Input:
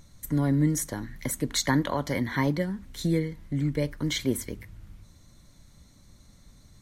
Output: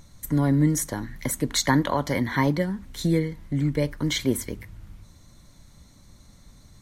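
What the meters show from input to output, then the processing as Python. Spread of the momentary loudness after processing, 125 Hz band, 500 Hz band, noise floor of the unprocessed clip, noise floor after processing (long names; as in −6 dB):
9 LU, +3.0 dB, +3.5 dB, −56 dBFS, −53 dBFS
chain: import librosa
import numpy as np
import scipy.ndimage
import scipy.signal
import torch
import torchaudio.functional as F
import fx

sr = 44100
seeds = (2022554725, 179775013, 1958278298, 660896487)

y = fx.peak_eq(x, sr, hz=920.0, db=2.5, octaves=0.77)
y = F.gain(torch.from_numpy(y), 3.0).numpy()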